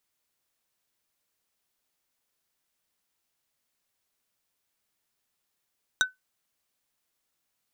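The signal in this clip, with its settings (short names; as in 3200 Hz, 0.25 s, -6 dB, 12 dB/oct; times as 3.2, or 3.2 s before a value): wood hit plate, lowest mode 1510 Hz, decay 0.16 s, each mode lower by 2.5 dB, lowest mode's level -16 dB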